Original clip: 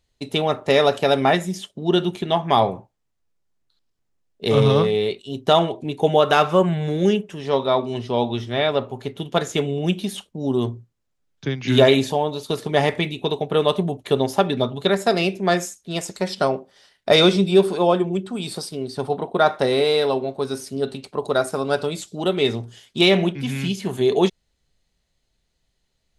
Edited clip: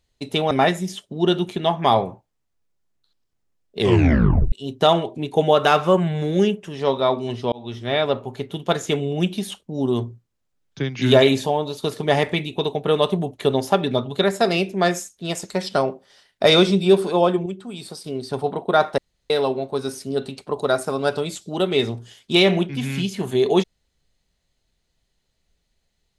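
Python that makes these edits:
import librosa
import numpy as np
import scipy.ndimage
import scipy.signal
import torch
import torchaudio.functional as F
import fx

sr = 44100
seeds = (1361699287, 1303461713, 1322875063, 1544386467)

y = fx.edit(x, sr, fx.cut(start_s=0.51, length_s=0.66),
    fx.tape_stop(start_s=4.45, length_s=0.73),
    fx.fade_in_span(start_s=8.18, length_s=0.53, curve='qsin'),
    fx.clip_gain(start_s=18.12, length_s=0.58, db=-6.0),
    fx.room_tone_fill(start_s=19.64, length_s=0.32), tone=tone)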